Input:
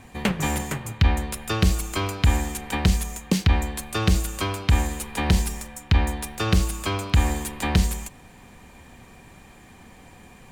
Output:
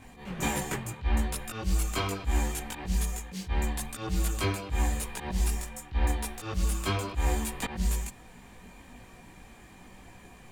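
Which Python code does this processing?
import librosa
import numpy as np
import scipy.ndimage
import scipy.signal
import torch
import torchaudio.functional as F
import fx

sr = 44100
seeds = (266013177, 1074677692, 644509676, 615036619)

y = fx.auto_swell(x, sr, attack_ms=154.0)
y = fx.chorus_voices(y, sr, voices=4, hz=0.88, base_ms=19, depth_ms=3.3, mix_pct=50)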